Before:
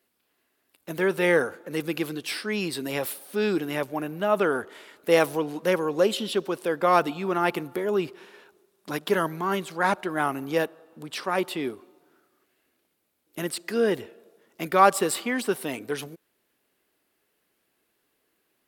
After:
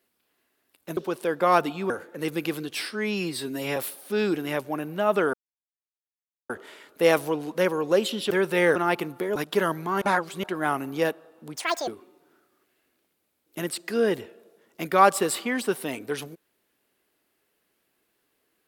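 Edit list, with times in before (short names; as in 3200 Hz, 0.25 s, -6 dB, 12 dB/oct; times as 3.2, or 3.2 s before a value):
0.97–1.42 swap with 6.38–7.31
2.43–3 stretch 1.5×
4.57 insert silence 1.16 s
7.91–8.9 cut
9.56–9.98 reverse
11.11–11.68 speed 183%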